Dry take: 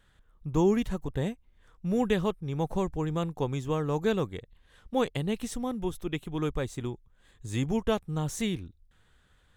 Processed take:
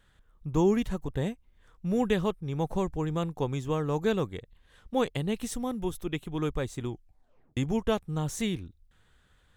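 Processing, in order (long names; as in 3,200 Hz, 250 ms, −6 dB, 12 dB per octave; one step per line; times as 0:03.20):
0:05.42–0:06.06: high-shelf EQ 8,000 Hz +5 dB
0:06.89: tape stop 0.68 s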